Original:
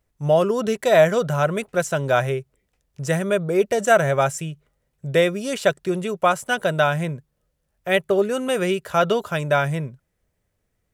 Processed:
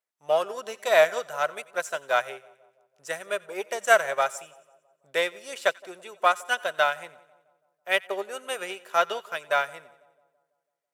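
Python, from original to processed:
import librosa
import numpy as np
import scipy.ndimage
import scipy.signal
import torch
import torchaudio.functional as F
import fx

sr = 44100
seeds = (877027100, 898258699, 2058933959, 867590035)

y = np.where(x < 0.0, 10.0 ** (-3.0 / 20.0) * x, x)
y = scipy.signal.sosfilt(scipy.signal.butter(2, 710.0, 'highpass', fs=sr, output='sos'), y)
y = fx.echo_split(y, sr, split_hz=1000.0, low_ms=165, high_ms=90, feedback_pct=52, wet_db=-15.5)
y = fx.upward_expand(y, sr, threshold_db=-38.0, expansion=1.5)
y = y * 10.0 ** (2.0 / 20.0)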